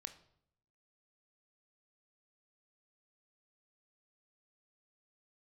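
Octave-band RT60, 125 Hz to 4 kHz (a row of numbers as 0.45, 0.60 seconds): 0.95, 0.85, 0.75, 0.65, 0.55, 0.50 seconds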